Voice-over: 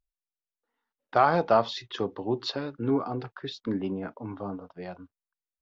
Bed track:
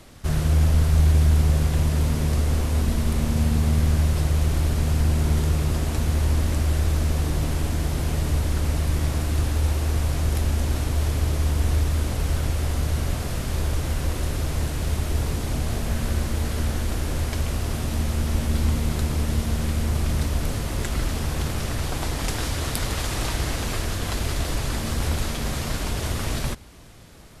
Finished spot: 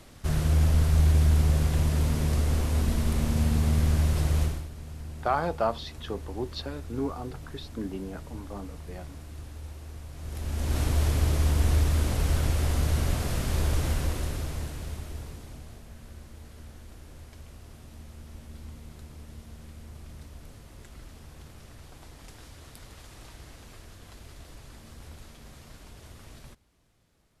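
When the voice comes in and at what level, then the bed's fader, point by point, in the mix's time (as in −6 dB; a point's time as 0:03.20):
4.10 s, −5.0 dB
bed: 0:04.43 −3.5 dB
0:04.69 −19 dB
0:10.12 −19 dB
0:10.80 −1.5 dB
0:13.88 −1.5 dB
0:15.88 −21.5 dB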